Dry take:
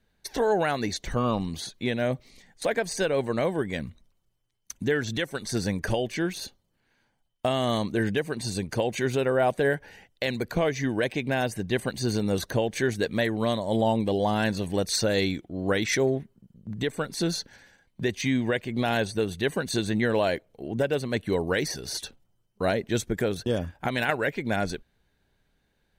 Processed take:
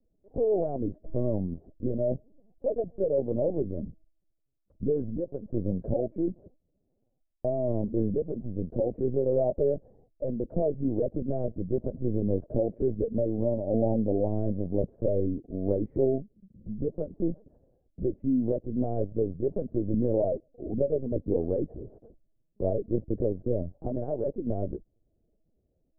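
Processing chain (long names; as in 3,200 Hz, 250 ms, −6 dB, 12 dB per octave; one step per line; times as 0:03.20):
Chebyshev low-pass filter 620 Hz, order 4
linear-prediction vocoder at 8 kHz pitch kept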